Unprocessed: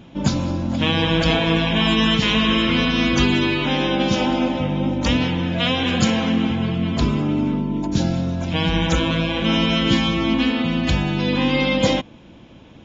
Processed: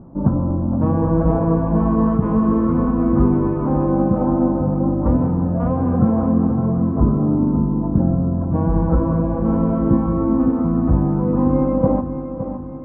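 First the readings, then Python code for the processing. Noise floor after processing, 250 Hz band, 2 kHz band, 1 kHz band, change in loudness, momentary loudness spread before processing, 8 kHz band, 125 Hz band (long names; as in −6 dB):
−27 dBFS, +3.0 dB, below −20 dB, −0.5 dB, +1.0 dB, 5 LU, can't be measured, +4.0 dB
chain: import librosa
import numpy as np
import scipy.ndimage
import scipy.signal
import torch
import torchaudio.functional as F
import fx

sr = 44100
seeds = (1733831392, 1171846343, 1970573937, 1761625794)

y = scipy.signal.sosfilt(scipy.signal.cheby1(4, 1.0, 1200.0, 'lowpass', fs=sr, output='sos'), x)
y = fx.tilt_eq(y, sr, slope=-1.5)
y = fx.echo_feedback(y, sr, ms=565, feedback_pct=50, wet_db=-10.0)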